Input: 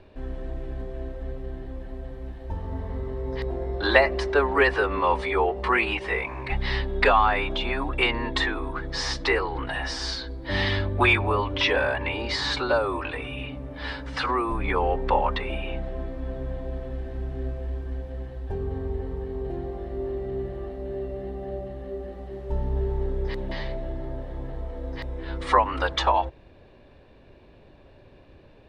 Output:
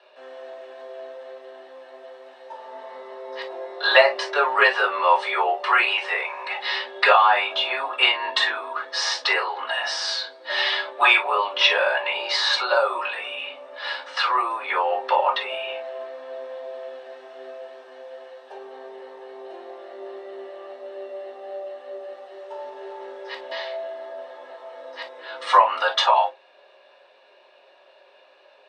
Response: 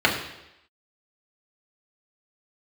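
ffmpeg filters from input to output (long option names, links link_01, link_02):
-filter_complex "[0:a]highpass=frequency=590:width=0.5412,highpass=frequency=590:width=1.3066[link_01];[1:a]atrim=start_sample=2205,afade=type=out:start_time=0.17:duration=0.01,atrim=end_sample=7938,asetrate=83790,aresample=44100[link_02];[link_01][link_02]afir=irnorm=-1:irlink=0,volume=-7.5dB"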